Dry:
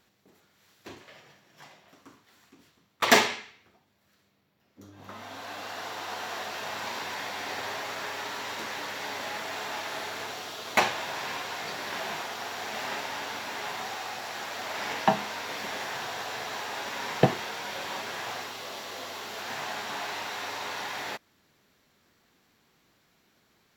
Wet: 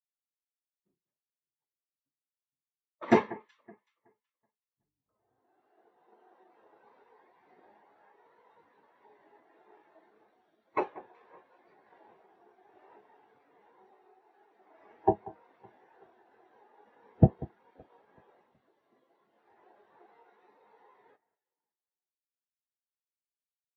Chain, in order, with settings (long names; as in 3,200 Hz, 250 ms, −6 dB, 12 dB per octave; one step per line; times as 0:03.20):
delay that swaps between a low-pass and a high-pass 188 ms, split 2,400 Hz, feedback 74%, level −8 dB
pitch-shifted copies added −12 semitones −1 dB
every bin expanded away from the loudest bin 2.5 to 1
level −5 dB